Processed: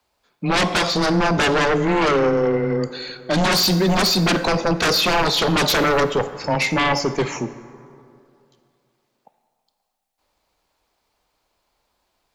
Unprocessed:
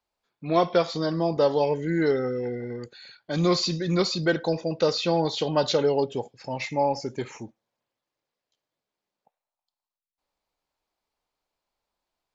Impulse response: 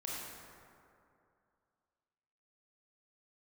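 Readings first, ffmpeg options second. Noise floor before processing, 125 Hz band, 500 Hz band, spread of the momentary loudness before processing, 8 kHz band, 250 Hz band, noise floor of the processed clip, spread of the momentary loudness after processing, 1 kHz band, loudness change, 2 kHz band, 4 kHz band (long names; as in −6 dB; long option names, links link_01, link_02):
below −85 dBFS, +7.0 dB, +3.5 dB, 13 LU, can't be measured, +6.5 dB, −73 dBFS, 8 LU, +8.5 dB, +6.5 dB, +14.0 dB, +10.5 dB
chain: -filter_complex "[0:a]afreqshift=13,aeval=exprs='0.398*sin(PI/2*6.31*val(0)/0.398)':channel_layout=same,asplit=2[link_01][link_02];[1:a]atrim=start_sample=2205,asetrate=43659,aresample=44100[link_03];[link_02][link_03]afir=irnorm=-1:irlink=0,volume=-11.5dB[link_04];[link_01][link_04]amix=inputs=2:normalize=0,volume=-7.5dB"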